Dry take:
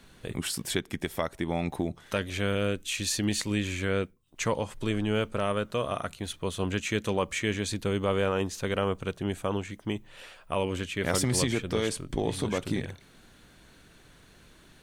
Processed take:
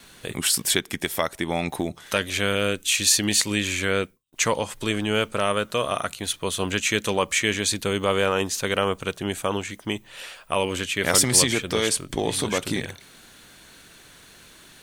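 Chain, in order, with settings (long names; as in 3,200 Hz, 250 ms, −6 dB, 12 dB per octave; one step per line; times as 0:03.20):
noise gate with hold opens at −50 dBFS
spectral tilt +2 dB per octave
level +6.5 dB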